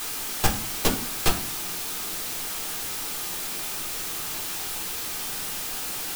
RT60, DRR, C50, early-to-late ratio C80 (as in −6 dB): 0.50 s, 1.0 dB, 11.0 dB, 15.0 dB